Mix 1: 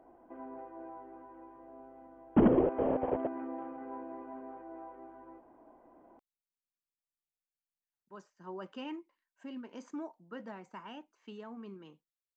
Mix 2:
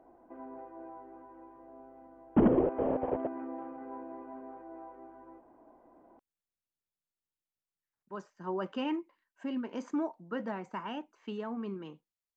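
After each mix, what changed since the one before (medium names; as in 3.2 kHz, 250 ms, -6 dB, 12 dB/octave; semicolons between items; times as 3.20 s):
speech +8.5 dB; master: add treble shelf 3.7 kHz -7.5 dB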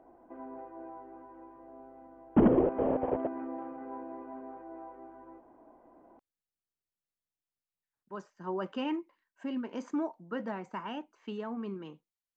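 reverb: on, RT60 2.7 s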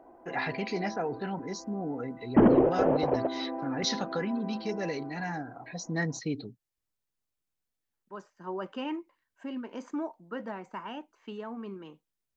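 first voice: unmuted; background +4.5 dB; master: add bass shelf 210 Hz -5 dB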